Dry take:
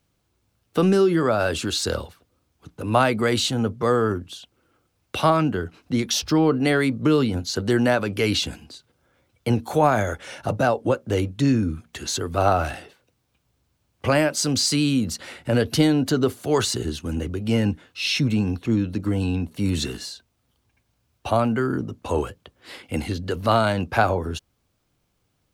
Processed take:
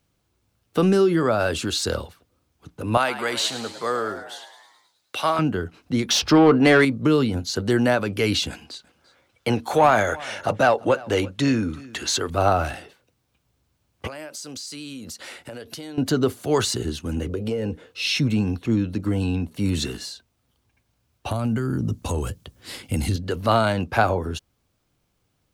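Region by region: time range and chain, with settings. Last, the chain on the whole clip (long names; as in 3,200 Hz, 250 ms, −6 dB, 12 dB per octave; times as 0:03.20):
0:02.97–0:05.39: high-pass filter 820 Hz 6 dB per octave + echo with shifted repeats 106 ms, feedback 62%, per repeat +87 Hz, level −12 dB
0:06.09–0:06.85: low-shelf EQ 460 Hz +5.5 dB + mid-hump overdrive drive 15 dB, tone 3,200 Hz, clips at −5.5 dBFS
0:08.50–0:12.30: mid-hump overdrive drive 11 dB, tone 5,100 Hz, clips at −4.5 dBFS + single-tap delay 342 ms −21.5 dB
0:14.07–0:15.98: bass and treble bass −10 dB, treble +4 dB + downward compressor 8 to 1, threshold −33 dBFS
0:17.27–0:18.02: parametric band 470 Hz +15 dB 0.44 octaves + downward compressor 12 to 1, threshold −21 dBFS
0:21.31–0:23.16: downward compressor 5 to 1, threshold −26 dBFS + bass and treble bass +11 dB, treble +11 dB
whole clip: no processing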